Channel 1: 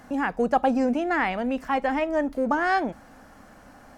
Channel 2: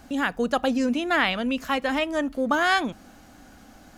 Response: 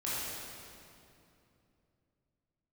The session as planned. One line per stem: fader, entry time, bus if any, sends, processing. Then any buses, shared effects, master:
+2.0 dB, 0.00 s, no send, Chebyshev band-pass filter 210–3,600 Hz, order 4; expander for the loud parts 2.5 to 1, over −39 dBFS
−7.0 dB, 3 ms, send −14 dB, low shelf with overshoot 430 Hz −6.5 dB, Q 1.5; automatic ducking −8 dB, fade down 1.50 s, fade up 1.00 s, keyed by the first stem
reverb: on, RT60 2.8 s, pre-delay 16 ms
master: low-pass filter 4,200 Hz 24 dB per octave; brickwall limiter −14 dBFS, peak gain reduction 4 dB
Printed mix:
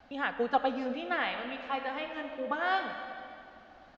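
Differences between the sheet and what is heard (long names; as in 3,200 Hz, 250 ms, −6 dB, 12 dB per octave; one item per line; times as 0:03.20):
stem 1 +2.0 dB → −6.0 dB
stem 2: polarity flipped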